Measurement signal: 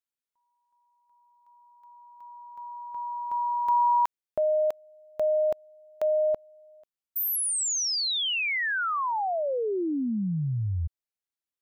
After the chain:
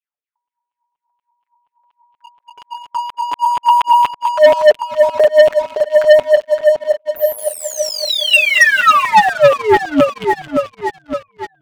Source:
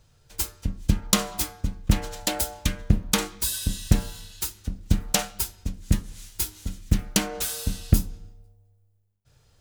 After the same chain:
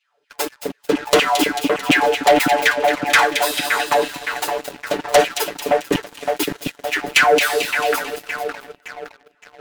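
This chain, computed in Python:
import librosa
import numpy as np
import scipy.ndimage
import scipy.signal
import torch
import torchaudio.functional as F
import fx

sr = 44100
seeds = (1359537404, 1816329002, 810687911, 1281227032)

y = fx.bass_treble(x, sr, bass_db=-9, treble_db=-14)
y = fx.filter_lfo_highpass(y, sr, shape='saw_down', hz=4.2, low_hz=270.0, high_hz=3000.0, q=5.8)
y = y + 0.89 * np.pad(y, (int(6.9 * sr / 1000.0), 0))[:len(y)]
y = fx.echo_split(y, sr, split_hz=2300.0, low_ms=565, high_ms=221, feedback_pct=52, wet_db=-8.0)
y = fx.leveller(y, sr, passes=3)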